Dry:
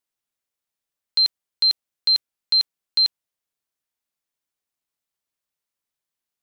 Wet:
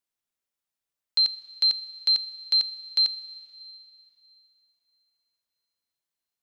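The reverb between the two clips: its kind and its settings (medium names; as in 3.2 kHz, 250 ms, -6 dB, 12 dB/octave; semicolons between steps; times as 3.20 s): Schroeder reverb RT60 3 s, combs from 27 ms, DRR 15.5 dB; trim -3 dB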